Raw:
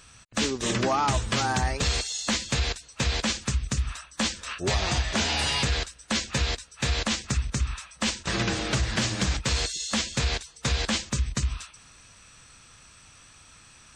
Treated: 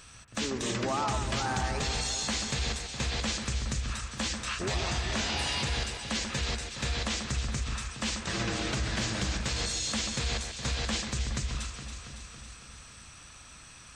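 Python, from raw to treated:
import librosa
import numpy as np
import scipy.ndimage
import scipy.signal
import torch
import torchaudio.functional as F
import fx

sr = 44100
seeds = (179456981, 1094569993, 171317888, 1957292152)

p1 = fx.over_compress(x, sr, threshold_db=-34.0, ratio=-1.0)
p2 = x + F.gain(torch.from_numpy(p1), -2.0).numpy()
p3 = fx.echo_alternate(p2, sr, ms=139, hz=2200.0, feedback_pct=81, wet_db=-6.5)
y = F.gain(torch.from_numpy(p3), -8.0).numpy()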